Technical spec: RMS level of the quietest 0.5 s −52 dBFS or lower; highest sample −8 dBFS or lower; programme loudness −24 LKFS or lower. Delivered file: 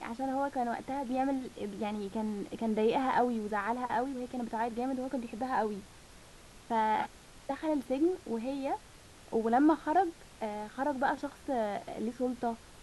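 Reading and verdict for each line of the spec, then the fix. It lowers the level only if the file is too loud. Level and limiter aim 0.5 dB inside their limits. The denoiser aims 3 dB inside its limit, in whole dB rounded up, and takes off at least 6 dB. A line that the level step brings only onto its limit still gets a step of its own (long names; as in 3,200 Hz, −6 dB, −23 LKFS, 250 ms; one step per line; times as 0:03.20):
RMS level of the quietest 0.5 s −54 dBFS: in spec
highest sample −17.0 dBFS: in spec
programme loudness −33.0 LKFS: in spec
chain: no processing needed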